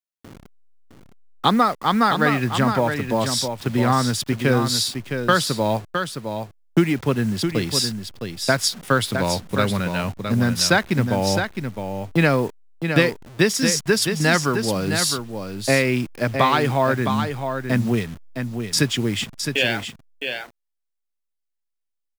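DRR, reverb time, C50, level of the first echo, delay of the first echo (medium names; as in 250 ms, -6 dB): no reverb, no reverb, no reverb, -7.0 dB, 662 ms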